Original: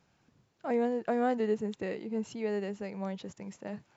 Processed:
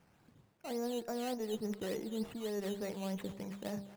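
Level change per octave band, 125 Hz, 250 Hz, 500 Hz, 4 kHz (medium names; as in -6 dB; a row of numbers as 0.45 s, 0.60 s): -2.0 dB, -5.0 dB, -6.5 dB, +4.0 dB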